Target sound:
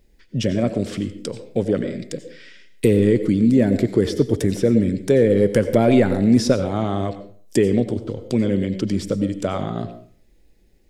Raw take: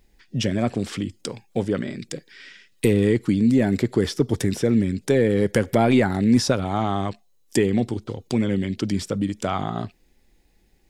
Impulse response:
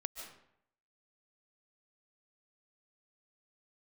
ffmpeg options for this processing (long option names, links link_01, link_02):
-filter_complex "[0:a]asplit=2[link_01][link_02];[link_02]lowshelf=frequency=740:width_type=q:width=3:gain=6.5[link_03];[1:a]atrim=start_sample=2205,asetrate=70560,aresample=44100[link_04];[link_03][link_04]afir=irnorm=-1:irlink=0,volume=3.5dB[link_05];[link_01][link_05]amix=inputs=2:normalize=0,volume=-6dB"